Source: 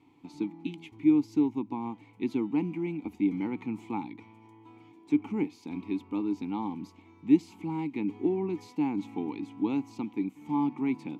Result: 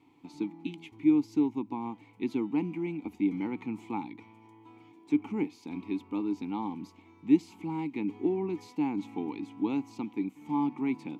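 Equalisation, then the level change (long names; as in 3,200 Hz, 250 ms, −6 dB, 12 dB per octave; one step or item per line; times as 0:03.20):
low-shelf EQ 200 Hz −3.5 dB
0.0 dB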